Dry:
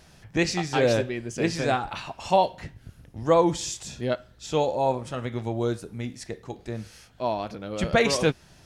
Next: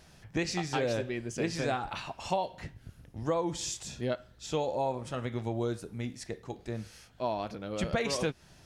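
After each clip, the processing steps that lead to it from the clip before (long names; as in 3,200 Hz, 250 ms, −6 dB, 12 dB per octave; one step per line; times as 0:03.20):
downward compressor 6 to 1, threshold −23 dBFS, peak gain reduction 9 dB
level −3.5 dB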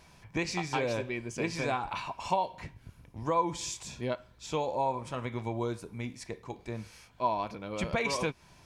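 hollow resonant body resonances 1,000/2,300 Hz, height 12 dB, ringing for 25 ms
level −1.5 dB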